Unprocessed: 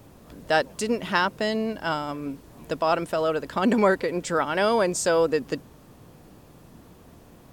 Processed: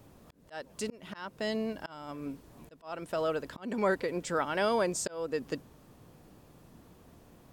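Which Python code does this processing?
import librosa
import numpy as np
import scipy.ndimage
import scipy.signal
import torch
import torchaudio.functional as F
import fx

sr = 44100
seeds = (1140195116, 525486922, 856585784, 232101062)

y = fx.auto_swell(x, sr, attack_ms=366.0)
y = y * librosa.db_to_amplitude(-6.5)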